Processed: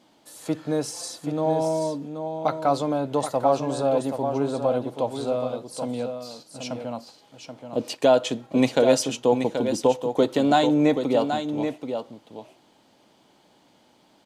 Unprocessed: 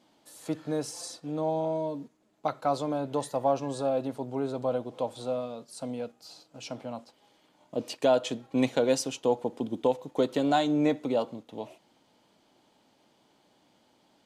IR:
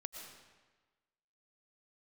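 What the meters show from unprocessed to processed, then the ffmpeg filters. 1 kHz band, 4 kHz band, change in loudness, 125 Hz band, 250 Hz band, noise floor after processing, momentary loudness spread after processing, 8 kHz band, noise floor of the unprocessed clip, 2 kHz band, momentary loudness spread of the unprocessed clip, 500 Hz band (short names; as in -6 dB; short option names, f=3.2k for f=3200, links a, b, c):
+6.0 dB, +6.0 dB, +6.0 dB, +6.5 dB, +6.0 dB, -60 dBFS, 15 LU, +6.0 dB, -67 dBFS, +6.0 dB, 15 LU, +6.0 dB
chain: -af "aecho=1:1:780:0.422,volume=5.5dB"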